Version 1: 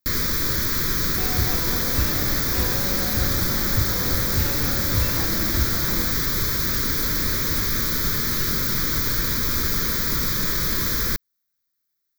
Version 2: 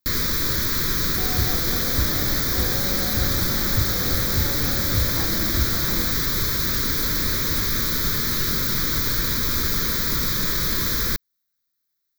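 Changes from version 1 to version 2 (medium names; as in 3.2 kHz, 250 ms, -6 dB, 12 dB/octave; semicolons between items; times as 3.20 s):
second sound: add brick-wall FIR band-stop 880–9900 Hz; master: add peaking EQ 3.9 kHz +4 dB 0.31 oct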